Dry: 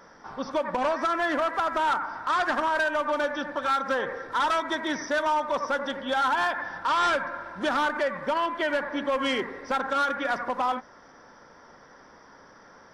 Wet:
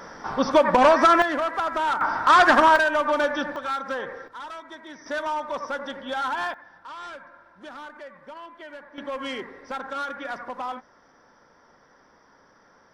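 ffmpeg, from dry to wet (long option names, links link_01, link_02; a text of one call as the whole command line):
ffmpeg -i in.wav -af "asetnsamples=nb_out_samples=441:pad=0,asendcmd='1.22 volume volume 0.5dB;2.01 volume volume 10dB;2.76 volume volume 4dB;3.56 volume volume -3dB;4.28 volume volume -13dB;5.06 volume volume -3dB;6.54 volume volume -15dB;8.98 volume volume -5.5dB',volume=10dB" out.wav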